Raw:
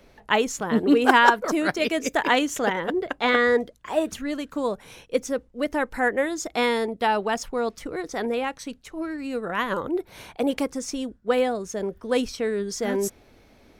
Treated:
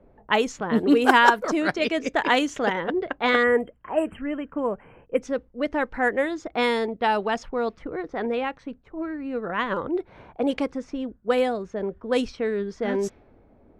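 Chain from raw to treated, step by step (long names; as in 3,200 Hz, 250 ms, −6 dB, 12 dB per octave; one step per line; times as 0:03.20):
time-frequency box erased 0:03.43–0:05.22, 3,200–7,400 Hz
low-pass that shuts in the quiet parts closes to 810 Hz, open at −16 dBFS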